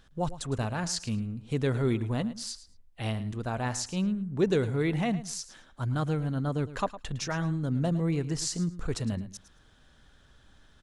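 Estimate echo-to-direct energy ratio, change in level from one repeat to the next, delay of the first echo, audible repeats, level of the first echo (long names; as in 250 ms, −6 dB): −15.0 dB, −15.0 dB, 109 ms, 2, −15.0 dB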